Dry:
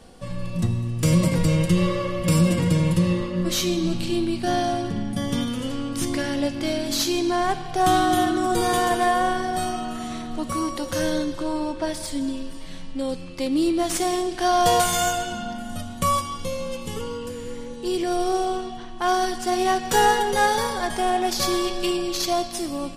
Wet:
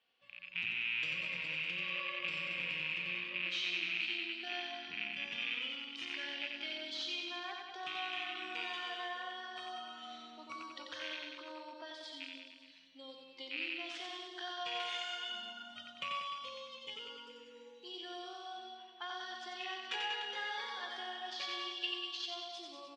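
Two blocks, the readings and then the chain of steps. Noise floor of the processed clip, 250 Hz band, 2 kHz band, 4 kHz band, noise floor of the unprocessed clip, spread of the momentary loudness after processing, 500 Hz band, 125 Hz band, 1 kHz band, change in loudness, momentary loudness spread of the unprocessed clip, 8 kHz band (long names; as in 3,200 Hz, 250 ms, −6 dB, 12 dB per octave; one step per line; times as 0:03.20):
−57 dBFS, −30.5 dB, −8.0 dB, −8.5 dB, −35 dBFS, 13 LU, −26.0 dB, below −35 dB, −22.0 dB, −16.0 dB, 12 LU, −29.5 dB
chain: loose part that buzzes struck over −28 dBFS, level −17 dBFS
noise reduction from a noise print of the clip's start 14 dB
downward compressor 3 to 1, threshold −26 dBFS, peak gain reduction 9.5 dB
resonant band-pass 2,800 Hz, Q 2.8
high-frequency loss of the air 160 metres
reverse bouncing-ball delay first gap 90 ms, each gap 1.1×, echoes 5
level +1 dB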